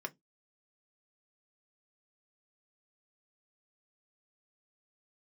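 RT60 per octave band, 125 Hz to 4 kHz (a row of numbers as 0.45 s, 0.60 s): 0.20 s, 0.25 s, 0.20 s, 0.15 s, 0.10 s, 0.15 s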